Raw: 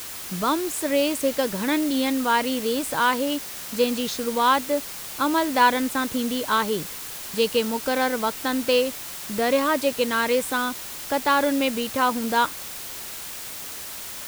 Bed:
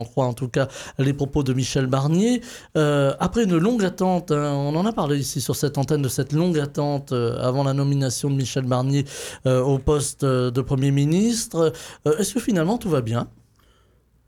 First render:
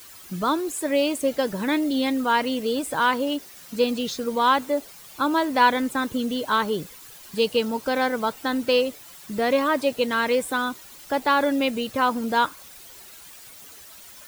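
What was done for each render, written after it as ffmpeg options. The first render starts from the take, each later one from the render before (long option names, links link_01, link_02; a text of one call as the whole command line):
ffmpeg -i in.wav -af "afftdn=noise_reduction=12:noise_floor=-36" out.wav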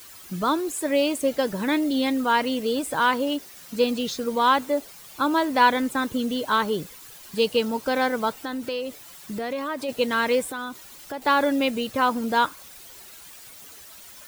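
ffmpeg -i in.wav -filter_complex "[0:a]asplit=3[link_01][link_02][link_03];[link_01]afade=type=out:start_time=8.35:duration=0.02[link_04];[link_02]acompressor=threshold=-28dB:ratio=3:attack=3.2:release=140:knee=1:detection=peak,afade=type=in:start_time=8.35:duration=0.02,afade=type=out:start_time=9.88:duration=0.02[link_05];[link_03]afade=type=in:start_time=9.88:duration=0.02[link_06];[link_04][link_05][link_06]amix=inputs=3:normalize=0,asettb=1/sr,asplit=3[link_07][link_08][link_09];[link_07]atrim=end=10.494[link_10];[link_08]atrim=start=10.49:end=11.22,asetpts=PTS-STARTPTS,afade=type=in:duration=0.004:curve=qsin,afade=type=out:start_time=0.726:duration=0.004:curve=qsin,acompressor=threshold=-32dB:ratio=2.5:attack=3.2:release=140:knee=1:detection=peak[link_11];[link_09]atrim=start=11.216[link_12];[link_10][link_11]acrossfade=duration=0.004:curve1=hsin:curve2=qsin[link_13];[link_13][link_12]acrossfade=duration=0.004:curve1=qsin:curve2=hsin" out.wav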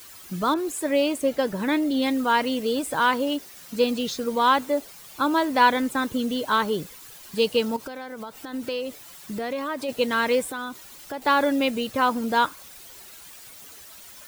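ffmpeg -i in.wav -filter_complex "[0:a]asettb=1/sr,asplit=3[link_01][link_02][link_03];[link_01]atrim=end=0.544[link_04];[link_02]atrim=start=0.54:end=2.02,asetpts=PTS-STARTPTS,afade=type=in:duration=0.004:curve=qsin,afade=type=out:start_time=1.476:duration=0.004:curve=qsin,adynamicequalizer=threshold=0.01:dfrequency=3000:dqfactor=0.7:tfrequency=3000:tqfactor=0.7:attack=5:release=100:ratio=0.375:range=2:mode=cutabove:tftype=highshelf[link_05];[link_03]atrim=start=2.016[link_06];[link_04][link_05]acrossfade=duration=0.004:curve1=hsin:curve2=qsin[link_07];[link_07][link_06]acrossfade=duration=0.004:curve1=qsin:curve2=hsin,asettb=1/sr,asplit=3[link_08][link_09][link_10];[link_08]atrim=end=7.764[link_11];[link_09]atrim=start=7.76:end=8.54,asetpts=PTS-STARTPTS,afade=type=in:duration=0.004:curve=qsin,afade=type=out:start_time=0.776:duration=0.004:curve=qsin,acompressor=threshold=-31dB:ratio=16:attack=3.2:release=140:knee=1:detection=peak[link_12];[link_10]atrim=start=8.536[link_13];[link_11][link_12]acrossfade=duration=0.004:curve1=hsin:curve2=qsin[link_14];[link_14][link_13]acrossfade=duration=0.004:curve1=qsin:curve2=hsin" out.wav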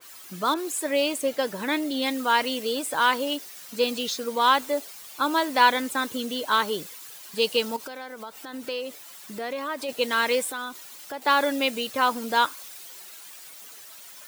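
ffmpeg -i in.wav -af "highpass=frequency=440:poles=1,adynamicequalizer=threshold=0.0251:dfrequency=2300:dqfactor=0.7:tfrequency=2300:tqfactor=0.7:attack=5:release=100:ratio=0.375:range=2:mode=boostabove:tftype=highshelf" out.wav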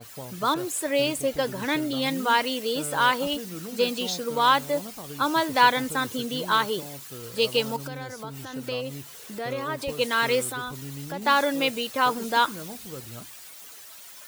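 ffmpeg -i in.wav -i bed.wav -filter_complex "[1:a]volume=-19dB[link_01];[0:a][link_01]amix=inputs=2:normalize=0" out.wav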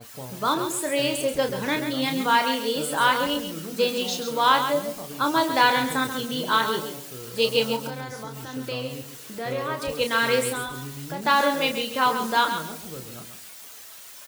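ffmpeg -i in.wav -filter_complex "[0:a]asplit=2[link_01][link_02];[link_02]adelay=31,volume=-7dB[link_03];[link_01][link_03]amix=inputs=2:normalize=0,aecho=1:1:135|270|405:0.376|0.0902|0.0216" out.wav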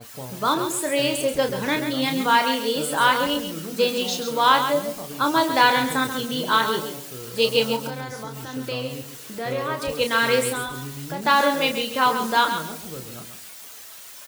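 ffmpeg -i in.wav -af "volume=2dB" out.wav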